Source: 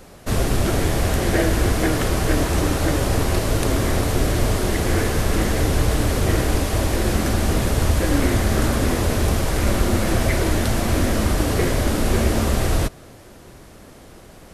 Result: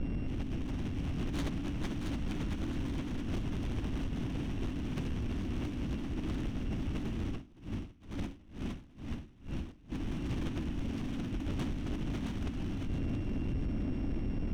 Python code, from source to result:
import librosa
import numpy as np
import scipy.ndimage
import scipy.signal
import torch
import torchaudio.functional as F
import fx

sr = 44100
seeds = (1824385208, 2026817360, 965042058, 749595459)

y = np.r_[np.sort(x[:len(x) // 16 * 16].reshape(-1, 16), axis=1).ravel(), x[len(x) // 16 * 16:]]
y = scipy.signal.sosfilt(scipy.signal.butter(2, 2800.0, 'lowpass', fs=sr, output='sos'), y)
y = 10.0 ** (-22.0 / 20.0) * (np.abs((y / 10.0 ** (-22.0 / 20.0) + 3.0) % 4.0 - 2.0) - 1.0)
y = fx.curve_eq(y, sr, hz=(160.0, 280.0, 450.0, 730.0, 1500.0), db=(0, 7, -13, -12, -10))
y = fx.over_compress(y, sr, threshold_db=-34.0, ratio=-0.5)
y = fx.low_shelf(y, sr, hz=120.0, db=9.0)
y = fx.echo_thinned(y, sr, ms=671, feedback_pct=44, hz=420.0, wet_db=-6.0)
y = 10.0 ** (-28.0 / 20.0) * np.tanh(y / 10.0 ** (-28.0 / 20.0))
y = fx.tremolo_db(y, sr, hz=2.2, depth_db=24, at=(7.3, 9.92))